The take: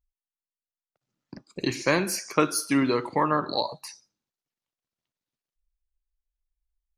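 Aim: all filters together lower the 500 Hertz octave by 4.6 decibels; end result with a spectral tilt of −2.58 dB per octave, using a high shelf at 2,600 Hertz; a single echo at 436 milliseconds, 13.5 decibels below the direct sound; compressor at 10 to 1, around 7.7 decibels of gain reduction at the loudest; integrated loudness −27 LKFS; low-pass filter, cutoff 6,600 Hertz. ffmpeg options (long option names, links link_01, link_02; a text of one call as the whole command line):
ffmpeg -i in.wav -af "lowpass=6600,equalizer=frequency=500:width_type=o:gain=-6,highshelf=frequency=2600:gain=8,acompressor=threshold=-26dB:ratio=10,aecho=1:1:436:0.211,volume=4.5dB" out.wav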